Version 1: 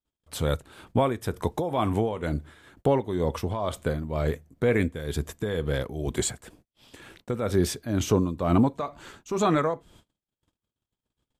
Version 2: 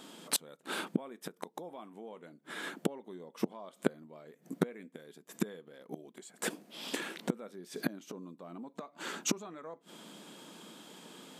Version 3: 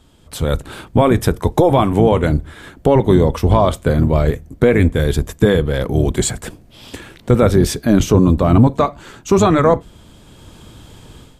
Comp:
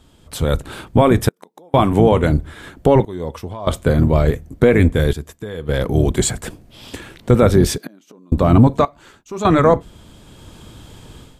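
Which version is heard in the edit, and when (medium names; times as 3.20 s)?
3
1.29–1.74 s: from 2
3.05–3.67 s: from 1
5.13–5.69 s: from 1
7.78–8.32 s: from 2
8.85–9.45 s: from 1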